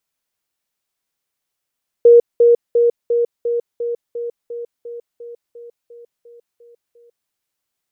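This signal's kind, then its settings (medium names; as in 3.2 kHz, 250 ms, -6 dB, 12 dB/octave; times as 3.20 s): level ladder 473 Hz -4 dBFS, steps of -3 dB, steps 15, 0.15 s 0.20 s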